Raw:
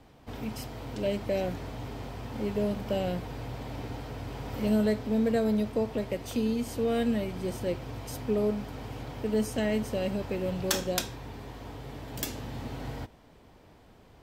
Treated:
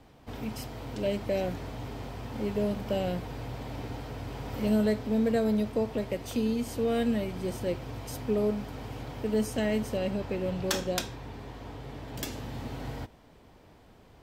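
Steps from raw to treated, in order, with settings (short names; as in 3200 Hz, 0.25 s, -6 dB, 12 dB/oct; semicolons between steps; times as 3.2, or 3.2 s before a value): 9.97–12.32 high shelf 7800 Hz -7 dB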